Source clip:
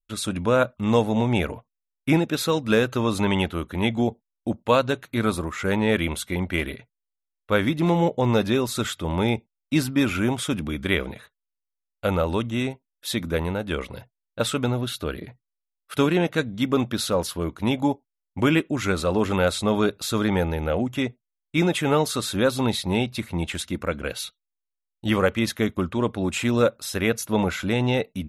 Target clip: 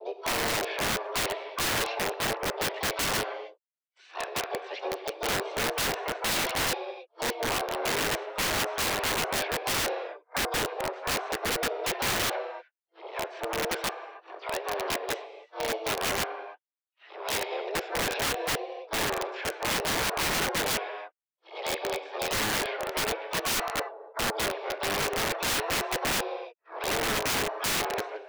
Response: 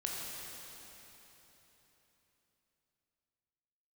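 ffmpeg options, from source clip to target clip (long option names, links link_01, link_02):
-filter_complex "[0:a]areverse,highpass=frequency=160:width_type=q:width=0.5412,highpass=frequency=160:width_type=q:width=1.307,lowpass=frequency=2400:width_type=q:width=0.5176,lowpass=frequency=2400:width_type=q:width=0.7071,lowpass=frequency=2400:width_type=q:width=1.932,afreqshift=210,asplit=4[link_01][link_02][link_03][link_04];[link_02]asetrate=58866,aresample=44100,atempo=0.749154,volume=-9dB[link_05];[link_03]asetrate=66075,aresample=44100,atempo=0.66742,volume=-4dB[link_06];[link_04]asetrate=88200,aresample=44100,atempo=0.5,volume=-13dB[link_07];[link_01][link_05][link_06][link_07]amix=inputs=4:normalize=0,asplit=2[link_08][link_09];[1:a]atrim=start_sample=2205,afade=type=out:start_time=0.37:duration=0.01,atrim=end_sample=16758[link_10];[link_09][link_10]afir=irnorm=-1:irlink=0,volume=-5dB[link_11];[link_08][link_11]amix=inputs=2:normalize=0,aeval=exprs='(mod(4.73*val(0)+1,2)-1)/4.73':channel_layout=same,volume=-9dB"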